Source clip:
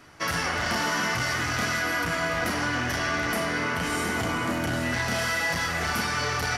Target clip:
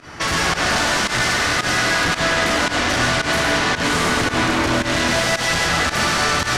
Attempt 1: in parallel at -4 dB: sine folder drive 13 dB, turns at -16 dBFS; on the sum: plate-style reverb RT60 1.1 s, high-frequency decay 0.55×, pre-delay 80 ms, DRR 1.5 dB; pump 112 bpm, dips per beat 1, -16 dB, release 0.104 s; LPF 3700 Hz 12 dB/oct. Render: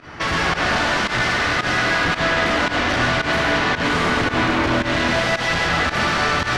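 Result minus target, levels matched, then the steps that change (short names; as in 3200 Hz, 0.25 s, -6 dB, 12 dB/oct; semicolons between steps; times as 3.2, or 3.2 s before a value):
8000 Hz band -8.5 dB
change: LPF 8000 Hz 12 dB/oct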